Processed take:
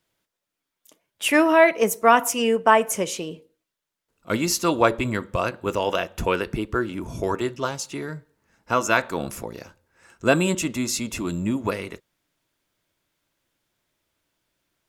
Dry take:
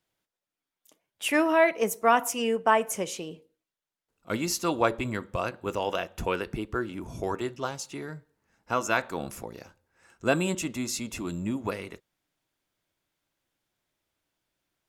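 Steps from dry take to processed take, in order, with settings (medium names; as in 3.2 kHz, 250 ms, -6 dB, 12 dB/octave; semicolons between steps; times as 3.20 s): band-stop 770 Hz, Q 12; trim +6 dB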